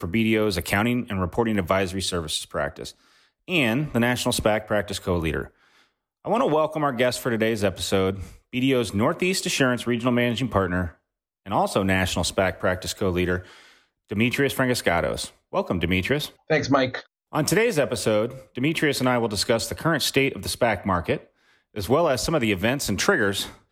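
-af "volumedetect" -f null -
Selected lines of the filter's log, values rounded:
mean_volume: -24.0 dB
max_volume: -6.3 dB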